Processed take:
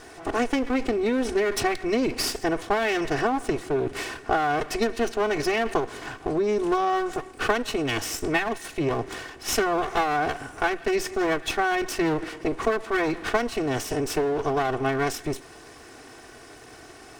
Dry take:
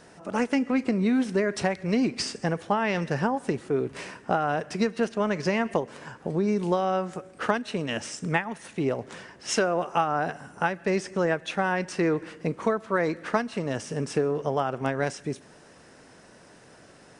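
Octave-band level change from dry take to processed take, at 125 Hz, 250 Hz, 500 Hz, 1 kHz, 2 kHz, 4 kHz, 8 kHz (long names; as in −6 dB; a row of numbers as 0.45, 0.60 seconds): −3.5, −0.5, +2.0, +3.0, +3.5, +5.0, +4.5 decibels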